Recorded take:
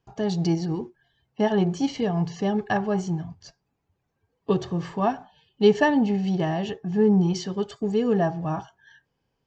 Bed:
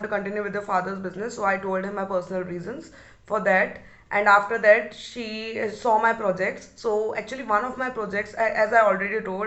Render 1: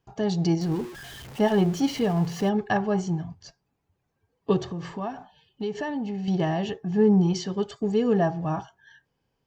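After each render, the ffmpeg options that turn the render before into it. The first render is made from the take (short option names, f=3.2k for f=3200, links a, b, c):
-filter_complex "[0:a]asettb=1/sr,asplit=3[a][b][c];[a]atrim=end=0.614[d];[b]atrim=start=0.61:end=2.49,asetpts=PTS-STARTPTS,afade=t=in:d=0.004:c=qsin,afade=t=out:st=1.876:d=0.004:c=qsin,aeval=exprs='val(0)+0.5*0.015*sgn(val(0))':c=same[e];[c]atrim=start=2.486[f];[d][e]acrossfade=d=0.004:c1=hsin:c2=qsin[g];[g][f]acrossfade=d=0.004:c1=qsin:c2=hsin,asettb=1/sr,asplit=3[h][i][j];[h]atrim=end=4.634[k];[i]atrim=start=4.63:end=6.28,asetpts=PTS-STARTPTS,afade=t=in:d=0.004:c=qsin,afade=t=out:st=1.646:d=0.004:c=qsin,acompressor=threshold=-30dB:ratio=3:attack=3.2:release=140:knee=1:detection=peak[l];[j]atrim=start=6.276[m];[k][l]acrossfade=d=0.004:c1=hsin:c2=qsin[n];[n][m]acrossfade=d=0.004:c1=qsin:c2=hsin"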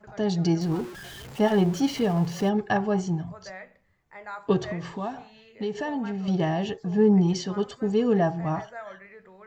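-filter_complex "[1:a]volume=-22dB[a];[0:a][a]amix=inputs=2:normalize=0"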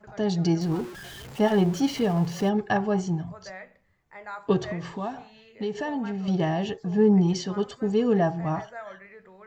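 -af anull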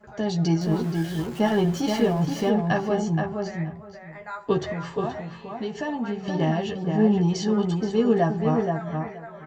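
-filter_complex "[0:a]asplit=2[a][b];[b]adelay=13,volume=-5dB[c];[a][c]amix=inputs=2:normalize=0,asplit=2[d][e];[e]adelay=475,lowpass=f=2.1k:p=1,volume=-4dB,asplit=2[f][g];[g]adelay=475,lowpass=f=2.1k:p=1,volume=0.17,asplit=2[h][i];[i]adelay=475,lowpass=f=2.1k:p=1,volume=0.17[j];[f][h][j]amix=inputs=3:normalize=0[k];[d][k]amix=inputs=2:normalize=0"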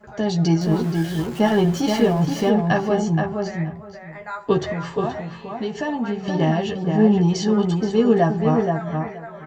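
-af "volume=4dB"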